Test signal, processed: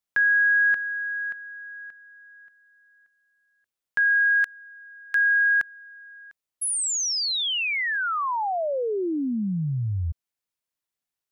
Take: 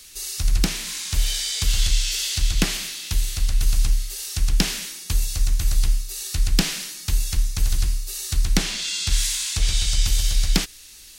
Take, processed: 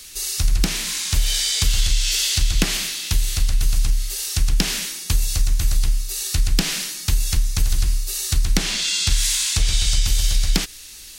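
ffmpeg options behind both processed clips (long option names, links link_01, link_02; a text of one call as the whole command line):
ffmpeg -i in.wav -af "acompressor=threshold=-18dB:ratio=6,volume=5dB" out.wav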